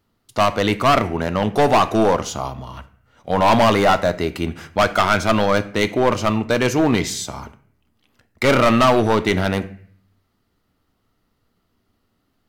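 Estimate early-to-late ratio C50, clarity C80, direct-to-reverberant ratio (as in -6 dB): 15.5 dB, 18.5 dB, 10.5 dB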